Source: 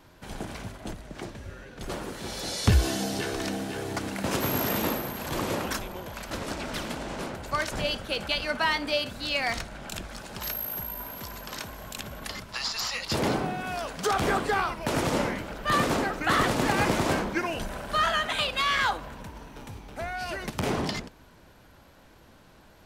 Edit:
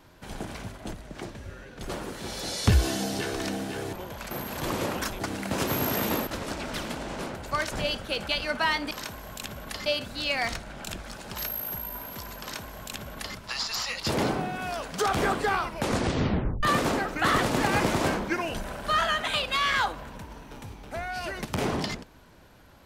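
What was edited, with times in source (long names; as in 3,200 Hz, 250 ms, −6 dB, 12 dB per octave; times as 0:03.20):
0:03.93–0:05.00: swap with 0:05.89–0:06.27
0:11.46–0:12.41: duplicate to 0:08.91
0:14.82: tape stop 0.86 s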